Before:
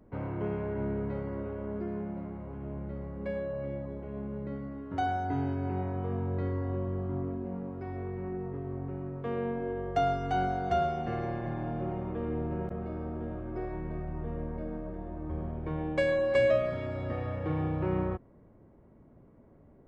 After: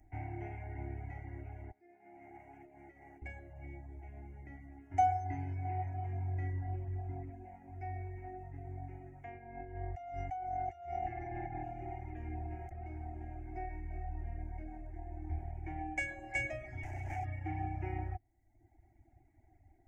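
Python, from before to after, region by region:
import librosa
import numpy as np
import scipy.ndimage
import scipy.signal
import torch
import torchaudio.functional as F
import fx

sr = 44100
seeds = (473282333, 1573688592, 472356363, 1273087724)

y = fx.chain(x, sr, fx.highpass(hz=260.0, slope=12),
    fx.over_compress(threshold_db=-45.0, ratio=-1.0), at=(1.71, 3.22))
y = fx.chain(y, sr, fx.lowpass(hz=2300.0, slope=6),
    fx.hum_notches(base_hz=60, count=5),
    fx.over_compress(threshold_db=-36.0, ratio=-1.0), at=(9.24, 11.64))
y = fx.chain(y, sr, fx.lower_of_two(delay_ms=1.3),
    fx.peak_eq(hz=430.0, db=6.0, octaves=0.82), at=(16.83, 17.25))
y = fx.curve_eq(y, sr, hz=(100.0, 190.0, 340.0, 500.0, 760.0, 1100.0, 2100.0, 3900.0, 6300.0, 10000.0), db=(0, -24, 3, -25, 11, -26, 6, -24, 6, 0))
y = fx.dereverb_blind(y, sr, rt60_s=0.84)
y = fx.peak_eq(y, sr, hz=460.0, db=-10.5, octaves=1.6)
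y = F.gain(torch.from_numpy(y), 1.0).numpy()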